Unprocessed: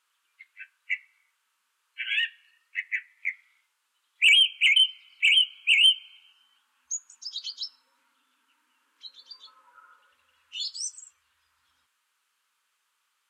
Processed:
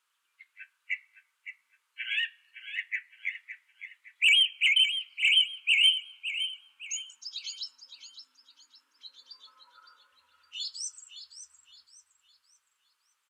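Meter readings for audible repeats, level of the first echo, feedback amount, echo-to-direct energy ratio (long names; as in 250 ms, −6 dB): 3, −10.5 dB, 35%, −10.0 dB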